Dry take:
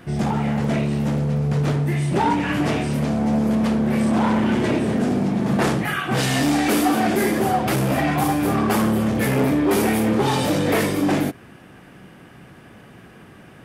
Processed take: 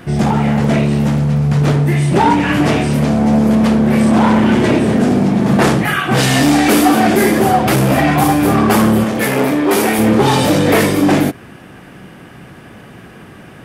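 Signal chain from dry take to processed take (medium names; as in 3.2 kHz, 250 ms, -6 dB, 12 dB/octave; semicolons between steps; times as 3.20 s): 1.07–1.62 s: peaking EQ 450 Hz -7 dB 0.83 oct; 9.04–9.99 s: high-pass 340 Hz 6 dB/octave; trim +8 dB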